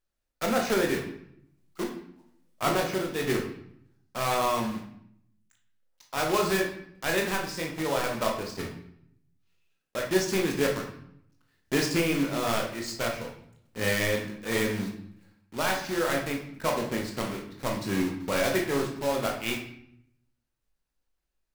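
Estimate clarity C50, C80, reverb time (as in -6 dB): 6.0 dB, 9.5 dB, 0.70 s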